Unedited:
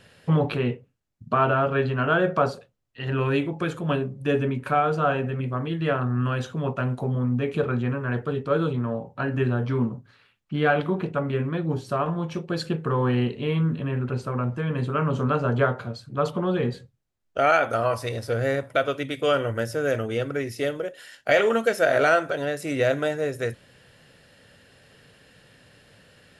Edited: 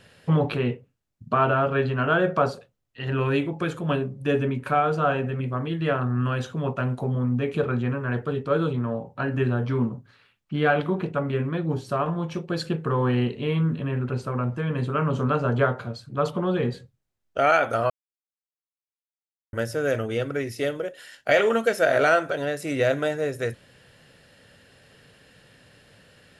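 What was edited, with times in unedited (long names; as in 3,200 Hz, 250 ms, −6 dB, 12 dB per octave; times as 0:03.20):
0:17.90–0:19.53: silence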